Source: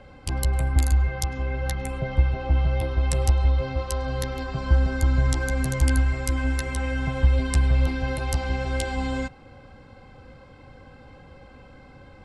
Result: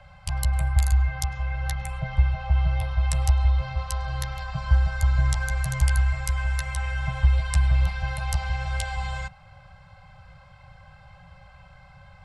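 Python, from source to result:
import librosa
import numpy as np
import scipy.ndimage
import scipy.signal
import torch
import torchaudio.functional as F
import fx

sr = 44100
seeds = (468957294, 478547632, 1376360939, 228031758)

y = scipy.signal.sosfilt(scipy.signal.cheby1(4, 1.0, [180.0, 590.0], 'bandstop', fs=sr, output='sos'), x)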